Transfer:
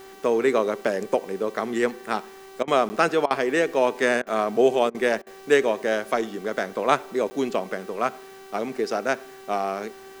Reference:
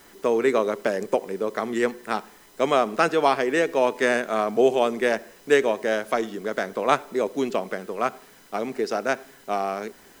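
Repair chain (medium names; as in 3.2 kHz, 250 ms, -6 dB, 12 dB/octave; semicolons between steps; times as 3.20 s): de-hum 386.2 Hz, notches 18; interpolate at 2.89/7.30 s, 10 ms; interpolate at 2.63/3.26/4.22/4.90/5.22 s, 45 ms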